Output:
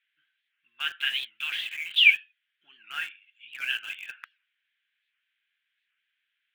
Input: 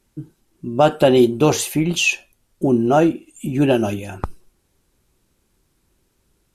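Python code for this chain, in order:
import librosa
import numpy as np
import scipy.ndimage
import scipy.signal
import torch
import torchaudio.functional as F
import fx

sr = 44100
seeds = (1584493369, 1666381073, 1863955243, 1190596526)

p1 = scipy.signal.sosfilt(scipy.signal.ellip(3, 1.0, 60, [1600.0, 3300.0], 'bandpass', fs=sr, output='sos'), x)
p2 = fx.quant_dither(p1, sr, seeds[0], bits=6, dither='none')
p3 = p1 + F.gain(torch.from_numpy(p2), -11.0).numpy()
y = fx.record_warp(p3, sr, rpm=78.0, depth_cents=160.0)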